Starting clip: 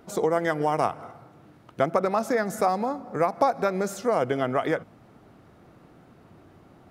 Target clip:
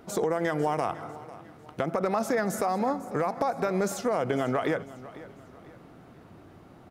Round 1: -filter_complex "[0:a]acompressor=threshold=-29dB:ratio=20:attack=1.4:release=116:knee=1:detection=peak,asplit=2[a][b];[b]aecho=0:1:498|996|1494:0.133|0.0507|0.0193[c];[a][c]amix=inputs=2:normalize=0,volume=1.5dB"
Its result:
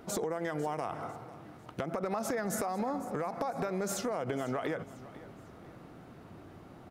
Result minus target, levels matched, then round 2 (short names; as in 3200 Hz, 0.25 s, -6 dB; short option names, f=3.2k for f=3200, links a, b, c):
compressor: peak gain reduction +7.5 dB
-filter_complex "[0:a]acompressor=threshold=-21dB:ratio=20:attack=1.4:release=116:knee=1:detection=peak,asplit=2[a][b];[b]aecho=0:1:498|996|1494:0.133|0.0507|0.0193[c];[a][c]amix=inputs=2:normalize=0,volume=1.5dB"